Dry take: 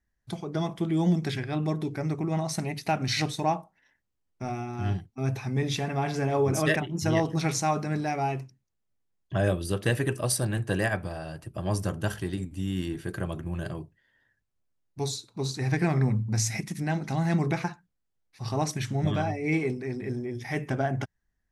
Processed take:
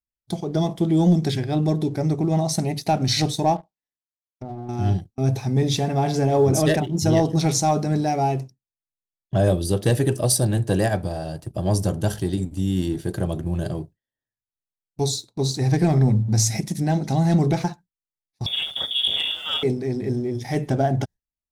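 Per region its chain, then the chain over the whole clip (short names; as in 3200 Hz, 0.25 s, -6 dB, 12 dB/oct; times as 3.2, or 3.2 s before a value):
3.56–4.69 G.711 law mismatch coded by A + treble ducked by the level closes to 940 Hz, closed at -35.5 dBFS + compressor, threshold -36 dBFS
18.46–19.63 minimum comb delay 1.4 ms + inverted band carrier 3500 Hz + HPF 100 Hz 6 dB/oct
whole clip: sample leveller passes 1; band shelf 1700 Hz -9 dB; gate with hold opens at -29 dBFS; gain +4 dB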